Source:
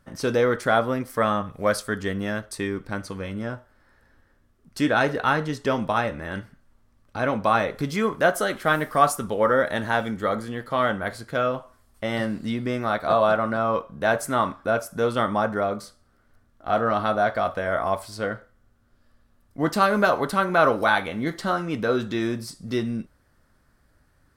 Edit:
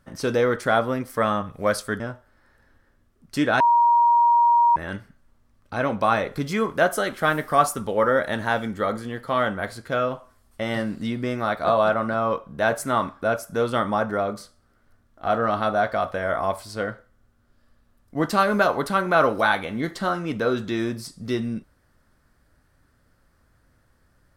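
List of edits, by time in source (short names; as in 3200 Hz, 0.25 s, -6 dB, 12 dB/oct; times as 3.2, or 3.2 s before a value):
2–3.43 cut
5.03–6.19 bleep 946 Hz -13.5 dBFS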